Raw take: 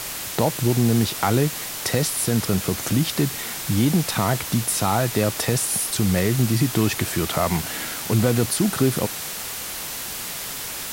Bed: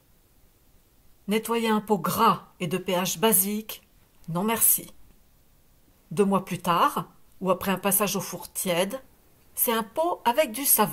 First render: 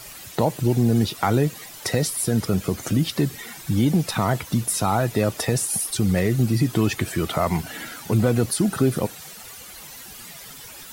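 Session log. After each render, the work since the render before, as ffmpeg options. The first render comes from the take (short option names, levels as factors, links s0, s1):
-af "afftdn=nr=13:nf=-31"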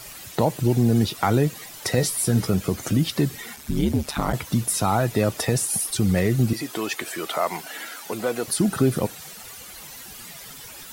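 -filter_complex "[0:a]asettb=1/sr,asplit=3[s0][s1][s2];[s0]atrim=end=1.964[s3];[s1]atrim=start=1.96:end=2.51,asetpts=PTS-STARTPTS,afade=t=in:d=0.004:c=qsin,afade=t=out:st=0.546:d=0.004:c=qsin,asplit=2[s4][s5];[s5]adelay=16,volume=0.501[s6];[s4][s6]amix=inputs=2:normalize=0,atrim=end_sample=24255[s7];[s2]atrim=start=2.506[s8];[s3][s7]acrossfade=d=0.004:c1=hsin:c2=qsin[s9];[s9][s8]acrossfade=d=0.004:c1=qsin:c2=hsin,asplit=3[s10][s11][s12];[s10]afade=t=out:st=3.55:d=0.02[s13];[s11]aeval=exprs='val(0)*sin(2*PI*72*n/s)':c=same,afade=t=in:st=3.55:d=0.02,afade=t=out:st=4.32:d=0.02[s14];[s12]afade=t=in:st=4.32:d=0.02[s15];[s13][s14][s15]amix=inputs=3:normalize=0,asettb=1/sr,asplit=3[s16][s17][s18];[s16]atrim=end=6.534[s19];[s17]atrim=start=6.53:end=8.48,asetpts=PTS-STARTPTS,afade=t=in:d=0.004:c=qsin,afade=t=out:st=1.946:d=0.004:c=qsin,highpass=440[s20];[s18]atrim=start=8.476[s21];[s19][s20]acrossfade=d=0.004:c1=hsin:c2=qsin[s22];[s22][s21]acrossfade=d=0.004:c1=qsin:c2=hsin"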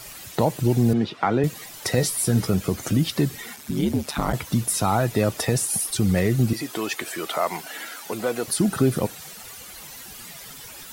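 -filter_complex "[0:a]asettb=1/sr,asplit=3[s0][s1][s2];[s0]atrim=end=0.934[s3];[s1]atrim=start=0.93:end=1.44,asetpts=PTS-STARTPTS,afade=t=in:d=0.004:c=qsin,afade=t=out:st=0.506:d=0.004:c=qsin,highpass=170,lowpass=2900[s4];[s2]atrim=start=1.436[s5];[s3][s4]acrossfade=d=0.004:c1=hsin:c2=qsin[s6];[s6][s5]acrossfade=d=0.004:c1=qsin:c2=hsin,asettb=1/sr,asplit=3[s7][s8][s9];[s7]atrim=end=3.504[s10];[s8]atrim=start=3.5:end=4.18,asetpts=PTS-STARTPTS,afade=t=in:d=0.004:c=qsin,afade=t=out:st=0.676:d=0.004:c=qsin,highpass=110[s11];[s9]atrim=start=4.176[s12];[s10][s11]acrossfade=d=0.004:c1=hsin:c2=qsin[s13];[s13][s12]acrossfade=d=0.004:c1=qsin:c2=hsin"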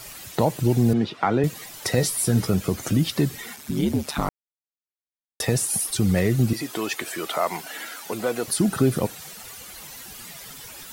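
-filter_complex "[0:a]asplit=3[s0][s1][s2];[s0]atrim=end=4.29,asetpts=PTS-STARTPTS,afade=t=out:st=4.286:d=0.004:c=hsin[s3];[s1]atrim=start=4.29:end=5.4,asetpts=PTS-STARTPTS,volume=0[s4];[s2]atrim=start=5.4,asetpts=PTS-STARTPTS,afade=t=in:d=0.004:c=hsin[s5];[s3][s4][s5]concat=n=3:v=0:a=1"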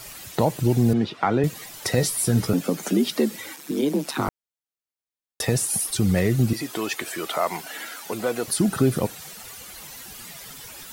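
-filter_complex "[0:a]asettb=1/sr,asplit=3[s0][s1][s2];[s0]atrim=end=2.534[s3];[s1]atrim=start=2.53:end=4.28,asetpts=PTS-STARTPTS,afade=t=in:d=0.004:c=qsin,afade=t=out:st=1.746:d=0.004:c=qsin,afreqshift=81[s4];[s2]atrim=start=4.276[s5];[s3][s4]acrossfade=d=0.004:c1=hsin:c2=qsin[s6];[s6][s5]acrossfade=d=0.004:c1=qsin:c2=hsin"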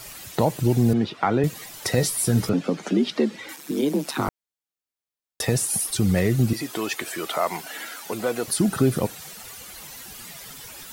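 -filter_complex "[0:a]asettb=1/sr,asplit=3[s0][s1][s2];[s0]atrim=end=2.494[s3];[s1]atrim=start=2.49:end=3.49,asetpts=PTS-STARTPTS,afade=t=in:d=0.004:c=qsin,afade=t=out:st=0.996:d=0.004:c=qsin,highpass=110,lowpass=4400[s4];[s2]atrim=start=3.486[s5];[s3][s4]acrossfade=d=0.004:c1=hsin:c2=qsin[s6];[s6][s5]acrossfade=d=0.004:c1=qsin:c2=hsin"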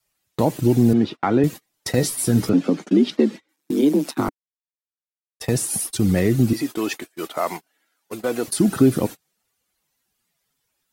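-af "adynamicequalizer=threshold=0.0158:dfrequency=290:dqfactor=1.9:tfrequency=290:tqfactor=1.9:attack=5:release=100:ratio=0.375:range=4:mode=boostabove:tftype=bell,agate=range=0.02:threshold=0.0447:ratio=16:detection=peak"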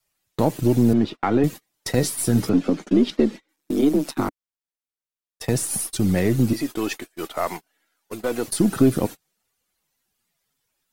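-af "aeval=exprs='if(lt(val(0),0),0.708*val(0),val(0))':c=same"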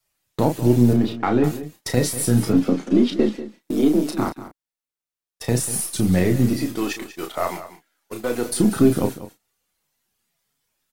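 -filter_complex "[0:a]asplit=2[s0][s1];[s1]adelay=33,volume=0.501[s2];[s0][s2]amix=inputs=2:normalize=0,aecho=1:1:192:0.2"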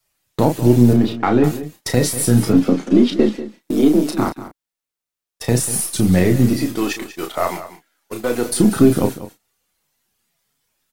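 -af "volume=1.58,alimiter=limit=0.891:level=0:latency=1"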